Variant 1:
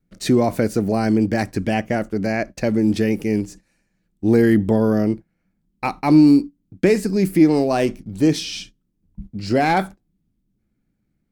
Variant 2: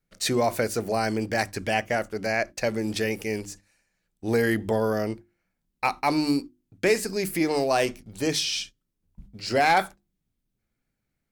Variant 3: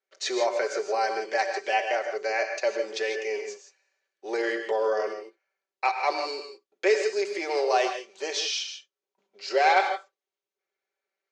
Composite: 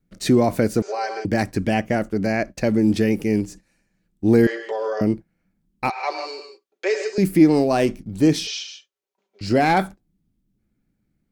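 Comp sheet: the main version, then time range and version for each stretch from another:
1
0.82–1.25 from 3
4.47–5.01 from 3
5.9–7.18 from 3
8.47–9.41 from 3
not used: 2

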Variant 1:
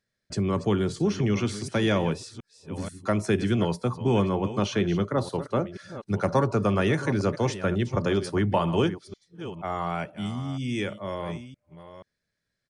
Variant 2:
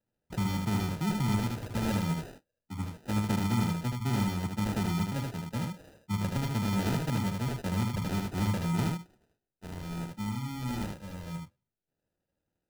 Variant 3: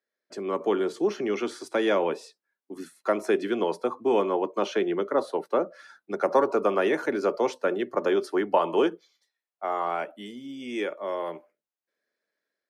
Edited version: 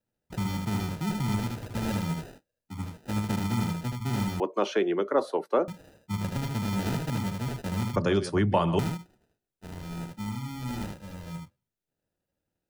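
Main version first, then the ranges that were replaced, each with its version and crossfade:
2
4.4–5.68 from 3
7.96–8.79 from 1

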